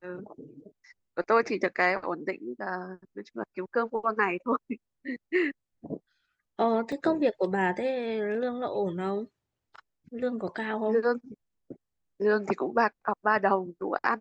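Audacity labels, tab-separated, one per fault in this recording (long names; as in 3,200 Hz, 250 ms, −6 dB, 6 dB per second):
6.920000	6.920000	drop-out 3.1 ms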